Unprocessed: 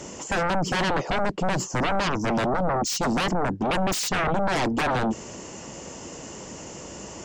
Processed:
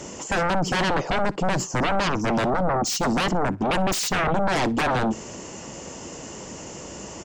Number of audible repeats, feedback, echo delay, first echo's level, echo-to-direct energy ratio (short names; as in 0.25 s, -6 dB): 2, 27%, 60 ms, -23.0 dB, -22.5 dB